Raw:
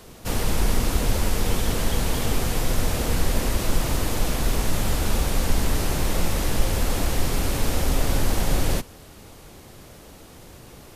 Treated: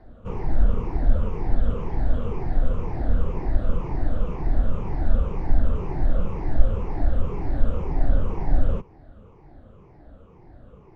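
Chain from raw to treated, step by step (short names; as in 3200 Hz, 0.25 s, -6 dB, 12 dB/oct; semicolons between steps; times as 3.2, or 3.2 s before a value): moving spectral ripple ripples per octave 0.77, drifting -2 Hz, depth 13 dB; LPF 1100 Hz 12 dB/oct; low shelf 79 Hz +7 dB; gain -6 dB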